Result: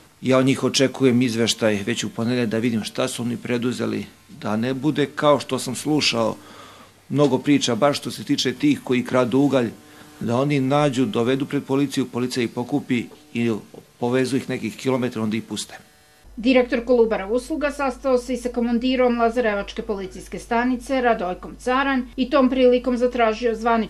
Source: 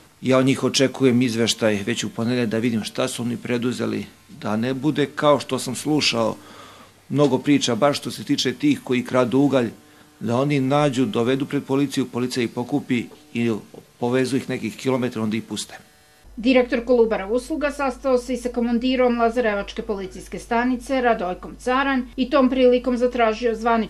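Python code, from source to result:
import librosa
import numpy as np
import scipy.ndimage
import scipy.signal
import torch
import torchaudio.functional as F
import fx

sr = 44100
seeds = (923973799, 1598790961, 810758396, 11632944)

y = fx.band_squash(x, sr, depth_pct=40, at=(8.56, 10.24))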